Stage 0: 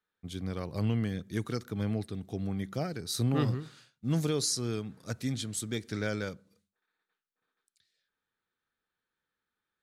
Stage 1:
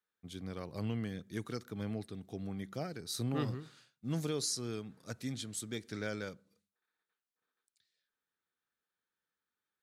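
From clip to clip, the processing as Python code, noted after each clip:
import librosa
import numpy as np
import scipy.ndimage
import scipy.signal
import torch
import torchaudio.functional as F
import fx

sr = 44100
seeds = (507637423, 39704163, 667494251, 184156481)

y = fx.low_shelf(x, sr, hz=87.0, db=-9.5)
y = y * 10.0 ** (-5.0 / 20.0)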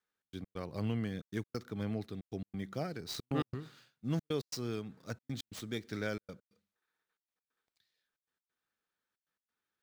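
y = scipy.ndimage.median_filter(x, 5, mode='constant')
y = fx.step_gate(y, sr, bpm=136, pattern='xx.x.xxxx', floor_db=-60.0, edge_ms=4.5)
y = y * 10.0 ** (2.0 / 20.0)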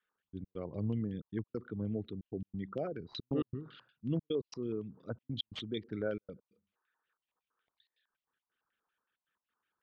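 y = fx.envelope_sharpen(x, sr, power=2.0)
y = fx.filter_lfo_lowpass(y, sr, shape='square', hz=5.4, low_hz=1000.0, high_hz=3000.0, q=4.2)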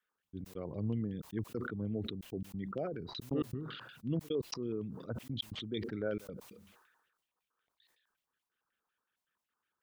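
y = fx.sustainer(x, sr, db_per_s=47.0)
y = y * 10.0 ** (-1.0 / 20.0)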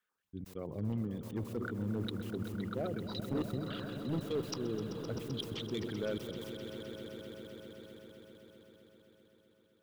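y = np.clip(10.0 ** (29.5 / 20.0) * x, -1.0, 1.0) / 10.0 ** (29.5 / 20.0)
y = fx.echo_swell(y, sr, ms=129, loudest=5, wet_db=-13.0)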